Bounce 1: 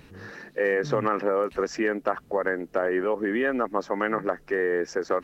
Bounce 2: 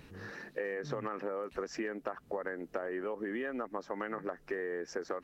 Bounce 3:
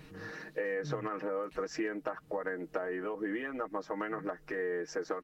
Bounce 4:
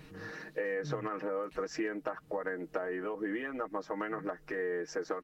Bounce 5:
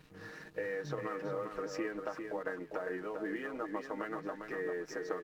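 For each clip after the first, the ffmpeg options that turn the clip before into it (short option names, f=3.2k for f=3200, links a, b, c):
-af "acompressor=threshold=-29dB:ratio=10,volume=-4dB"
-af "aecho=1:1:6.4:0.71"
-af anull
-filter_complex "[0:a]asplit=2[a][b];[b]adelay=400,lowpass=f=3.2k:p=1,volume=-5.5dB,asplit=2[c][d];[d]adelay=400,lowpass=f=3.2k:p=1,volume=0.26,asplit=2[e][f];[f]adelay=400,lowpass=f=3.2k:p=1,volume=0.26[g];[a][c][e][g]amix=inputs=4:normalize=0,aeval=exprs='sgn(val(0))*max(abs(val(0))-0.00141,0)':c=same,volume=-3dB"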